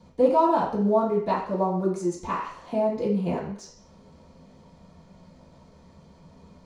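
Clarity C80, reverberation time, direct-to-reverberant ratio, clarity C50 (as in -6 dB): 9.0 dB, 0.55 s, -11.0 dB, 5.5 dB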